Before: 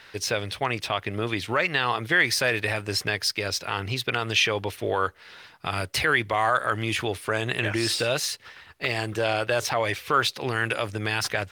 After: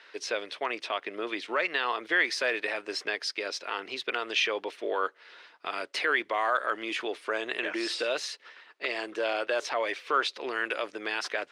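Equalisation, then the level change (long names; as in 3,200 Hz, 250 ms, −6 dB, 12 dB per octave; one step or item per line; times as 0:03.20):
high-pass filter 310 Hz 24 dB per octave
high-frequency loss of the air 88 metres
notch filter 800 Hz, Q 12
−3.5 dB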